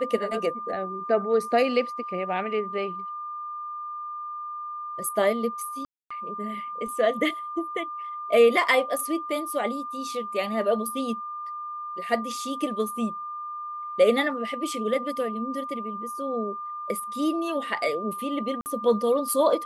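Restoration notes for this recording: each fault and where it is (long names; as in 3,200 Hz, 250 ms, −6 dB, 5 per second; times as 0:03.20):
whistle 1,200 Hz −32 dBFS
0:05.85–0:06.11: drop-out 255 ms
0:18.61–0:18.66: drop-out 49 ms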